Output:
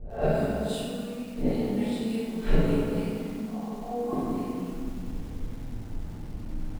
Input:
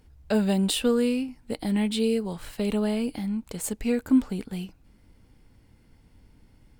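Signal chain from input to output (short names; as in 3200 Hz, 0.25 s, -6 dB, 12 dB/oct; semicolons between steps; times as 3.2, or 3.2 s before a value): spectral swells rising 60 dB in 0.40 s; 3.41–4.13 vocal tract filter a; low-pass opened by the level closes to 700 Hz, open at -22.5 dBFS; flipped gate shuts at -26 dBFS, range -25 dB; doubler 46 ms -3 dB; 0.45–1.41 compressor 10:1, threshold -48 dBFS, peak gain reduction 9.5 dB; harmonic tremolo 3.5 Hz, depth 70%, crossover 470 Hz; reverb RT60 1.8 s, pre-delay 3 ms, DRR -9 dB; lo-fi delay 94 ms, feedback 80%, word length 9-bit, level -10 dB; gain +8.5 dB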